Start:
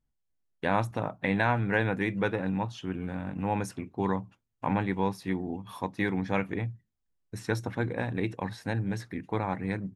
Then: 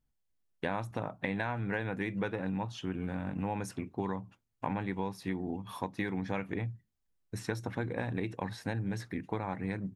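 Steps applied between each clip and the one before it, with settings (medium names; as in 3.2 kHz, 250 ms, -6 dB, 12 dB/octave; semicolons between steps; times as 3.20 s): compression, threshold -30 dBFS, peak gain reduction 10 dB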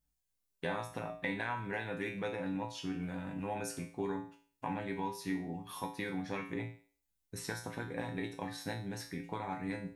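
treble shelf 4.3 kHz +10 dB; feedback comb 57 Hz, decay 0.45 s, harmonics odd, mix 90%; trim +7.5 dB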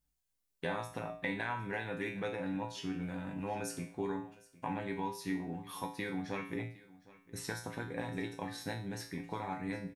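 delay 760 ms -20.5 dB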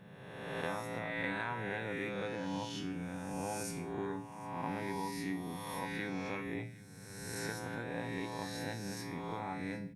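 reverse spectral sustain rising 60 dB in 1.48 s; band noise 100–210 Hz -52 dBFS; trim -3.5 dB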